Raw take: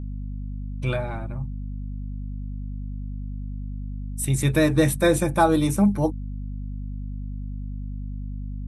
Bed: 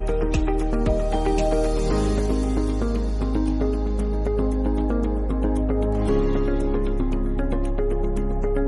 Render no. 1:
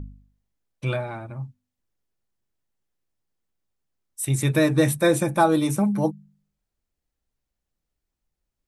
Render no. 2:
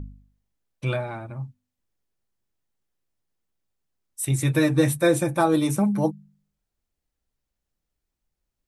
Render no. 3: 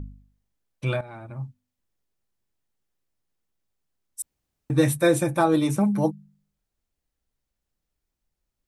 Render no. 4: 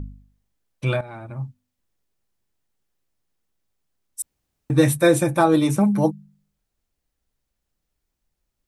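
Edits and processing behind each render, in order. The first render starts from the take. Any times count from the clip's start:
de-hum 50 Hz, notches 5
4.31–5.54 s: comb of notches 210 Hz
1.01–1.43 s: fade in, from -13 dB; 4.22–4.70 s: room tone; 5.39–5.81 s: treble shelf 8.2 kHz -7 dB
trim +3.5 dB

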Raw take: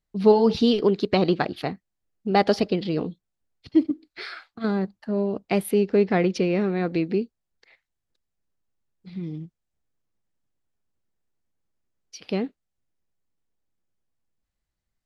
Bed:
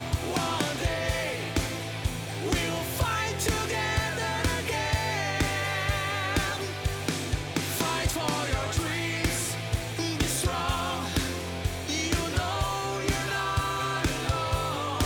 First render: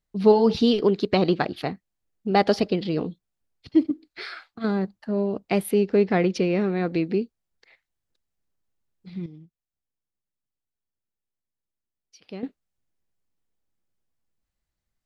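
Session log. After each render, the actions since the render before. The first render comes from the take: 9.26–12.43 s: gain -11 dB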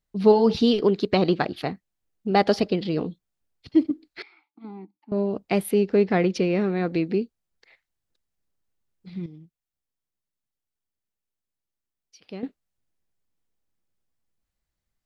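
4.22–5.12 s: vowel filter u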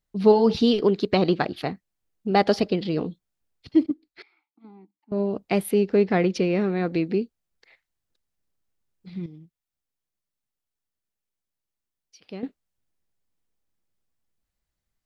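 3.86–5.20 s: upward expansion, over -40 dBFS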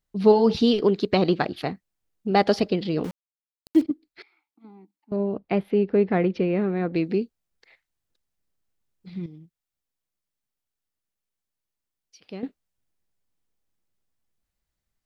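3.04–3.82 s: small samples zeroed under -34 dBFS; 5.16–6.96 s: distance through air 320 m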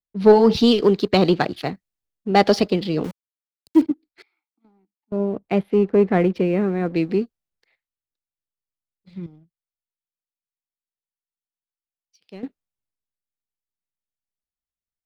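waveshaping leveller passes 1; three bands expanded up and down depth 40%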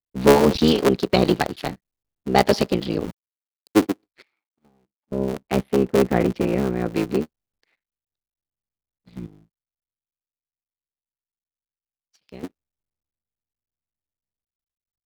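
cycle switcher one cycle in 3, muted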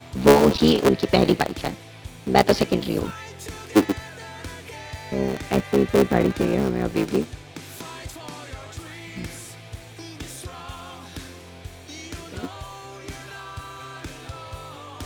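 add bed -9 dB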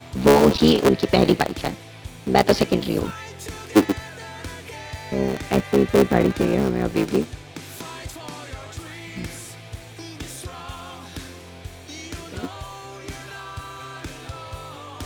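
trim +1.5 dB; peak limiter -3 dBFS, peak gain reduction 3 dB

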